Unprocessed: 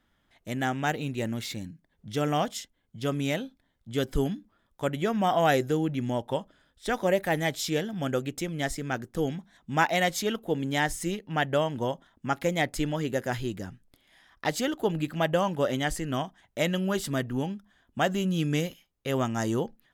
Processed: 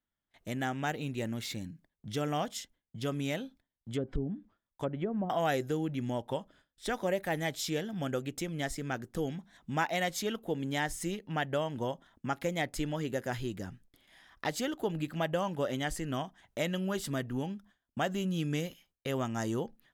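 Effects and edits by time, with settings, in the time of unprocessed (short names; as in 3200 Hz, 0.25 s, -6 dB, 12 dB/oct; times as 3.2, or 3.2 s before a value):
3.94–5.3 treble ducked by the level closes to 340 Hz, closed at -21 dBFS
whole clip: gate with hold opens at -51 dBFS; compressor 1.5:1, threshold -39 dBFS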